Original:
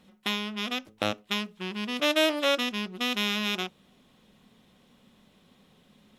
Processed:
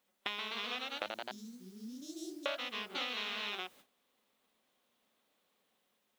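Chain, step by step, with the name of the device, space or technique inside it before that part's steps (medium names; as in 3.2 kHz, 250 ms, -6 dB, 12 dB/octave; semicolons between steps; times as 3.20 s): 1.06–2.46 s: inverse Chebyshev band-stop 870–2000 Hz, stop band 80 dB; ever faster or slower copies 140 ms, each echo +1 st, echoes 3; baby monitor (band-pass 480–4000 Hz; compression 8:1, threshold -35 dBFS, peak gain reduction 16 dB; white noise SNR 23 dB; gate -58 dBFS, range -16 dB)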